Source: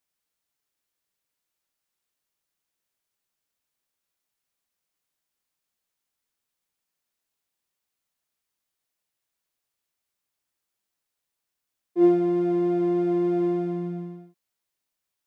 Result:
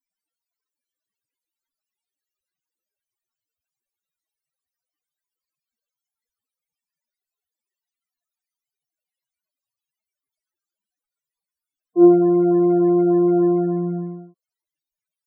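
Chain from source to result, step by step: loudest bins only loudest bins 16; gain +7 dB

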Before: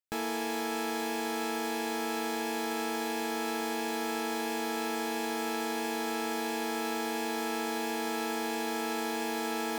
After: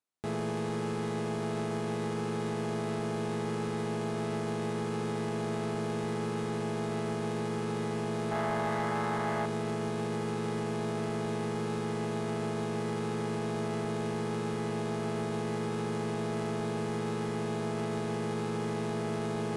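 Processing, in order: high shelf 2500 Hz -10 dB; in parallel at +2.5 dB: limiter -30.5 dBFS, peak gain reduction 6.5 dB; on the sum: HPF 330 Hz 6 dB/oct; speed mistake 15 ips tape played at 7.5 ips; spectral gain 8.32–9.46, 560–2200 Hz +9 dB; soft clip -23 dBFS, distortion -20 dB; gain -1 dB

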